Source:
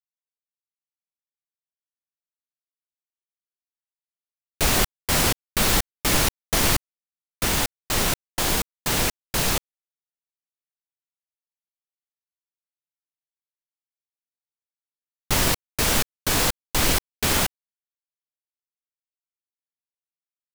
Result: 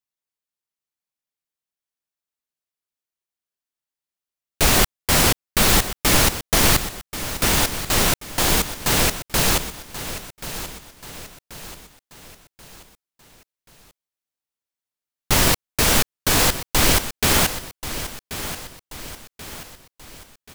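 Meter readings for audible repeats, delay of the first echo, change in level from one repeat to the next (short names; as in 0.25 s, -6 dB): 4, 1.083 s, -7.0 dB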